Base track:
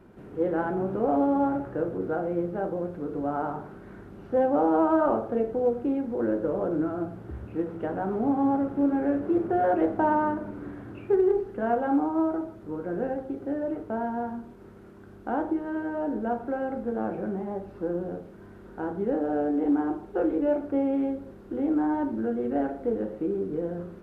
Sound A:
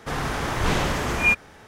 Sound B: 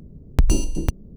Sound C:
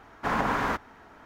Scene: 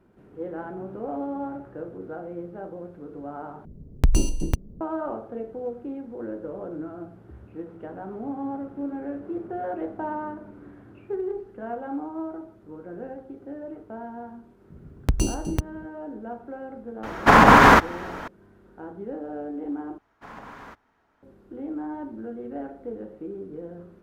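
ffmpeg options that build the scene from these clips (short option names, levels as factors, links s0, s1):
-filter_complex "[2:a]asplit=2[s0][s1];[3:a]asplit=2[s2][s3];[0:a]volume=0.422[s4];[s1]highpass=47[s5];[s2]alimiter=level_in=7.08:limit=0.891:release=50:level=0:latency=1[s6];[s4]asplit=3[s7][s8][s9];[s7]atrim=end=3.654[s10];[s0]atrim=end=1.16,asetpts=PTS-STARTPTS,volume=0.794[s11];[s8]atrim=start=4.806:end=19.984[s12];[s3]atrim=end=1.25,asetpts=PTS-STARTPTS,volume=0.158[s13];[s9]atrim=start=21.226[s14];[s5]atrim=end=1.16,asetpts=PTS-STARTPTS,volume=0.75,afade=t=in:d=0.004:c=hsin,afade=t=out:st=1.156:d=0.004:c=hsin,adelay=14700[s15];[s6]atrim=end=1.25,asetpts=PTS-STARTPTS,volume=0.891,afade=t=in:d=0.004:c=hsin,afade=t=out:st=1.246:d=0.004:c=hsin,adelay=17030[s16];[s10][s11]acrossfade=d=0.004:c1=hsin:c2=hsin[s17];[s17][s12]acrossfade=d=0.004:c1=hsin:c2=hsin[s18];[s18][s13]acrossfade=d=0.004:c1=hsin:c2=hsin[s19];[s19][s14]acrossfade=d=0.004:c1=hsin:c2=hsin[s20];[s20][s15][s16]amix=inputs=3:normalize=0"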